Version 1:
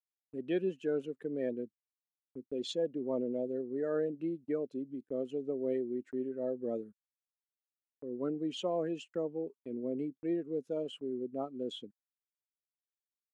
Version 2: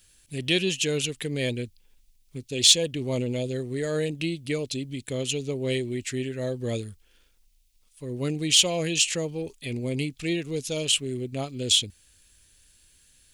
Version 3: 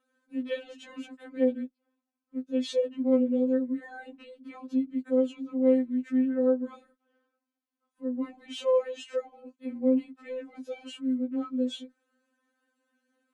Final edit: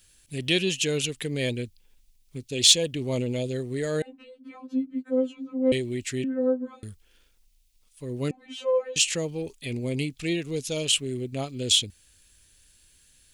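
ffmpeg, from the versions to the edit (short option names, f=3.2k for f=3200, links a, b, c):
-filter_complex "[2:a]asplit=3[a][b][c];[1:a]asplit=4[d][e][f][g];[d]atrim=end=4.022[h];[a]atrim=start=4.018:end=5.722[i];[e]atrim=start=5.718:end=6.242[j];[b]atrim=start=6.238:end=6.832[k];[f]atrim=start=6.828:end=8.312[l];[c]atrim=start=8.308:end=8.962[m];[g]atrim=start=8.958[n];[h][i]acrossfade=d=0.004:c1=hsin:c2=hsin[o];[o][j]acrossfade=d=0.004:c1=hsin:c2=hsin[p];[p][k]acrossfade=d=0.004:c1=hsin:c2=hsin[q];[q][l]acrossfade=d=0.004:c1=hsin:c2=hsin[r];[r][m]acrossfade=d=0.004:c1=hsin:c2=hsin[s];[s][n]acrossfade=d=0.004:c1=hsin:c2=hsin"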